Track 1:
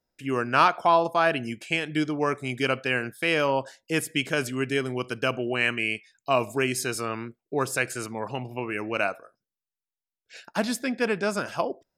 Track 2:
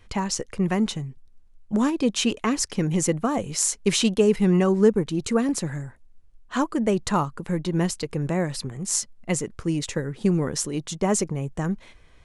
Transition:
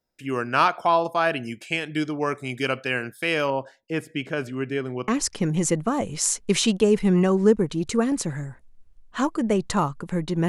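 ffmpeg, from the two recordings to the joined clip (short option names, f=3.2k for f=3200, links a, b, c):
-filter_complex "[0:a]asettb=1/sr,asplit=3[a][b][c];[a]atrim=end=3.504[d];[b]atrim=start=3.5:end=5.08,asetpts=PTS-STARTPTS,afade=t=in:d=0.004:c=qsin,afade=t=out:st=1.576:d=0.004:c=qsin,lowpass=f=1.5k:p=1[e];[c]atrim=start=5.076[f];[d][e]acrossfade=d=0.004:c1=hsin:c2=qsin[g];[g][f]acrossfade=d=0.004:c1=qsin:c2=hsin,apad=whole_dur=10.48,atrim=end=10.48,atrim=end=5.082[h];[1:a]atrim=start=2.448:end=7.85[i];[h][i]acrossfade=d=0.004:c1=hsin:c2=hsin"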